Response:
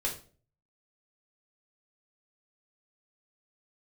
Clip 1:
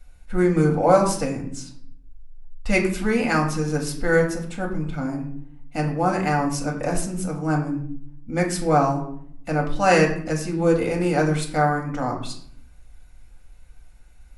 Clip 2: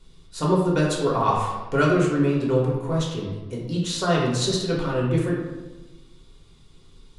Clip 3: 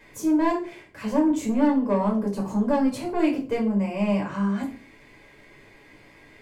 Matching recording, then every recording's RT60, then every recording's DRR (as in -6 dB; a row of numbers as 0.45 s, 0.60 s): 3; 0.65 s, 1.2 s, 0.40 s; -0.5 dB, -4.0 dB, -2.5 dB